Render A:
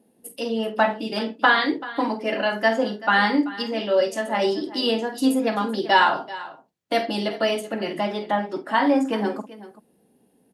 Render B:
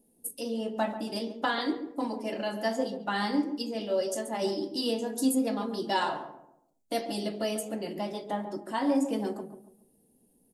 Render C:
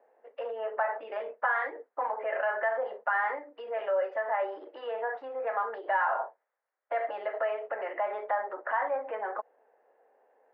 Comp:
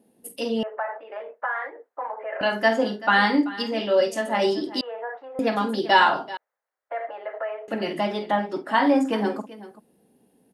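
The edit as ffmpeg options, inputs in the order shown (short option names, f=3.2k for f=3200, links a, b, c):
-filter_complex "[2:a]asplit=3[a][b][c];[0:a]asplit=4[d][e][f][g];[d]atrim=end=0.632[h];[a]atrim=start=0.628:end=2.412[i];[e]atrim=start=2.408:end=4.812[j];[b]atrim=start=4.808:end=5.392[k];[f]atrim=start=5.388:end=6.372[l];[c]atrim=start=6.368:end=7.682[m];[g]atrim=start=7.678[n];[h][i]acrossfade=d=0.004:c1=hsin:c2=hsin[o];[o][j]acrossfade=d=0.004:c1=hsin:c2=hsin[p];[p][k]acrossfade=d=0.004:c1=hsin:c2=hsin[q];[q][l]acrossfade=d=0.004:c1=hsin:c2=hsin[r];[r][m]acrossfade=d=0.004:c1=hsin:c2=hsin[s];[s][n]acrossfade=d=0.004:c1=hsin:c2=hsin"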